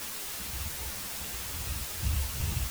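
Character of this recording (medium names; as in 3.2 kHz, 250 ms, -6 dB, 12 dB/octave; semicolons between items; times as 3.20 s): a buzz of ramps at a fixed pitch in blocks of 16 samples; tremolo saw down 2.5 Hz, depth 80%; a quantiser's noise floor 6-bit, dither triangular; a shimmering, thickened sound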